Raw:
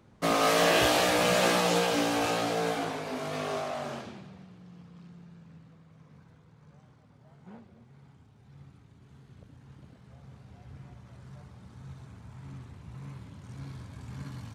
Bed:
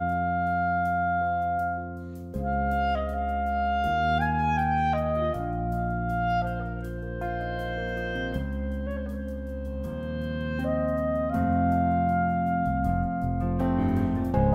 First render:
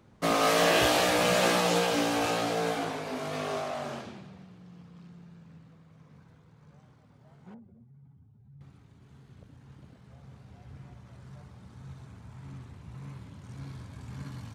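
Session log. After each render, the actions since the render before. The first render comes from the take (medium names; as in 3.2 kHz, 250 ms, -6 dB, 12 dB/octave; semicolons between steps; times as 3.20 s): 7.54–8.61 s: spectral contrast enhancement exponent 1.7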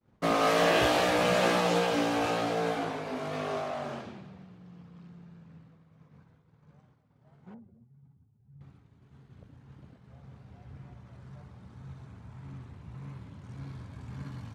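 expander -51 dBFS; treble shelf 4.6 kHz -9.5 dB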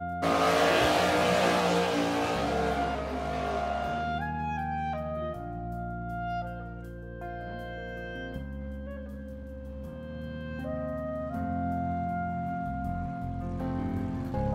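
add bed -7.5 dB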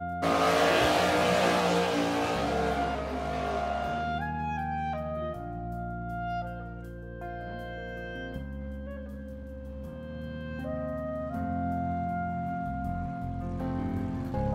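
no audible change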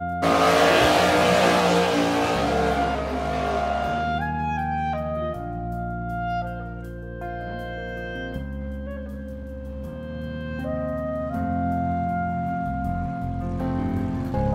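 trim +6.5 dB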